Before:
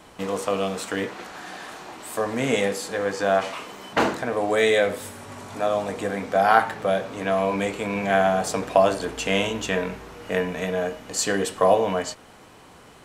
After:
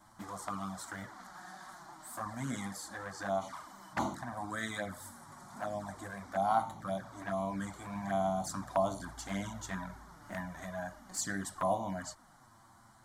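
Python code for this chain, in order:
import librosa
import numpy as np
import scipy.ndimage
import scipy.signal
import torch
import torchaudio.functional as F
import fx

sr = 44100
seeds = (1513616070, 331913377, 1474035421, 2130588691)

y = fx.fixed_phaser(x, sr, hz=1100.0, stages=4)
y = fx.env_flanger(y, sr, rest_ms=10.9, full_db=-23.0)
y = y * librosa.db_to_amplitude(-6.0)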